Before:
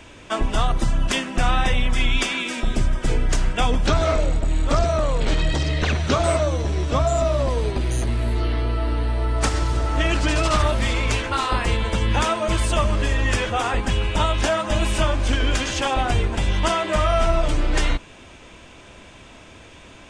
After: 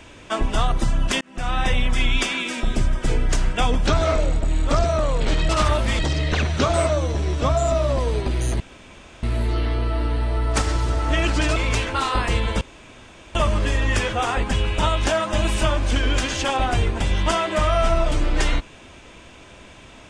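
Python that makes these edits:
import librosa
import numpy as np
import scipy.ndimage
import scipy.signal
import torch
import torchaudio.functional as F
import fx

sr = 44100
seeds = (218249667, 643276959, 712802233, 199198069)

y = fx.edit(x, sr, fx.fade_in_span(start_s=1.21, length_s=0.49),
    fx.insert_room_tone(at_s=8.1, length_s=0.63),
    fx.move(start_s=10.43, length_s=0.5, to_s=5.49),
    fx.room_tone_fill(start_s=11.98, length_s=0.74), tone=tone)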